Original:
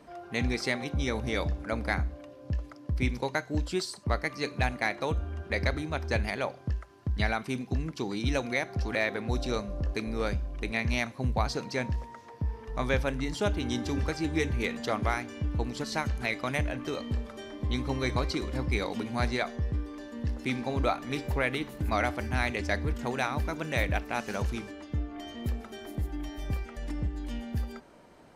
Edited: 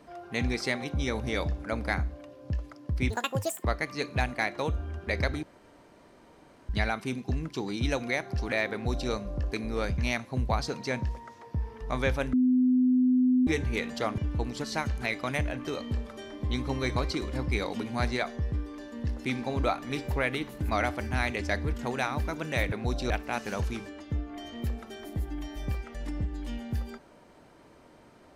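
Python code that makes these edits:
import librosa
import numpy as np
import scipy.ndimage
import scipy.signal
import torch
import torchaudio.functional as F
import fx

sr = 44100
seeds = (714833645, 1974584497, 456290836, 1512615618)

y = fx.edit(x, sr, fx.speed_span(start_s=3.1, length_s=0.98, speed=1.78),
    fx.room_tone_fill(start_s=5.86, length_s=1.26),
    fx.duplicate(start_s=9.16, length_s=0.38, to_s=23.92),
    fx.cut(start_s=10.41, length_s=0.44),
    fx.bleep(start_s=13.2, length_s=1.14, hz=253.0, db=-19.5),
    fx.cut(start_s=15.05, length_s=0.33), tone=tone)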